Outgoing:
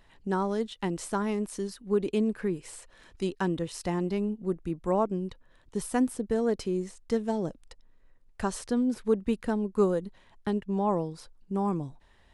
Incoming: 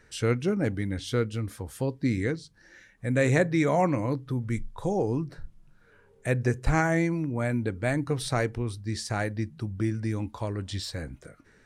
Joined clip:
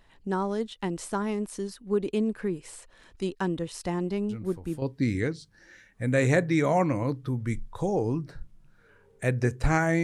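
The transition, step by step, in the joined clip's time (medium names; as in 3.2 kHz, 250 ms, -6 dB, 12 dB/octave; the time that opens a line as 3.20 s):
outgoing
4.29 s: add incoming from 1.32 s 0.53 s -9 dB
4.82 s: go over to incoming from 1.85 s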